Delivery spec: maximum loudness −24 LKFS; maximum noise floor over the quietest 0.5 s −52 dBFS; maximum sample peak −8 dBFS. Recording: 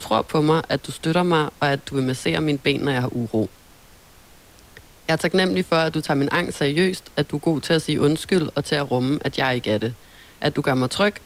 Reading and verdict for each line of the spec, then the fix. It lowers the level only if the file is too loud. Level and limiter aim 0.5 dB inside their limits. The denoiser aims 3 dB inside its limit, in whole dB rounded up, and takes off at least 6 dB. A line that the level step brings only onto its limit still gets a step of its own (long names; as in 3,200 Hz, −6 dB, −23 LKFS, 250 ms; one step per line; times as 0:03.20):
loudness −21.5 LKFS: out of spec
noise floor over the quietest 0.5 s −49 dBFS: out of spec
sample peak −5.5 dBFS: out of spec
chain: broadband denoise 6 dB, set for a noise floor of −49 dBFS
level −3 dB